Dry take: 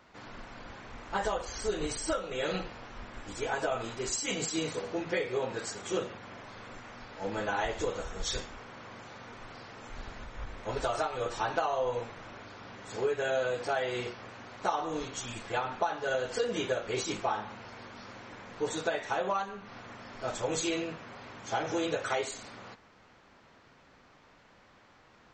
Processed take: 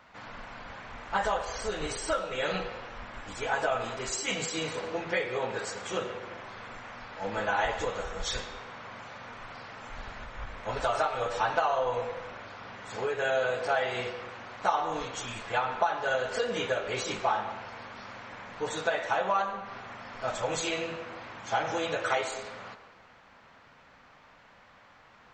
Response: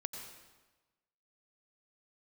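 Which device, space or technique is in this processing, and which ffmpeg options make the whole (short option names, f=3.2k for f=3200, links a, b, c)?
filtered reverb send: -filter_complex "[0:a]asplit=2[a][b];[b]highpass=f=350:w=0.5412,highpass=f=350:w=1.3066,lowpass=3.7k[c];[1:a]atrim=start_sample=2205[d];[c][d]afir=irnorm=-1:irlink=0,volume=-1dB[e];[a][e]amix=inputs=2:normalize=0"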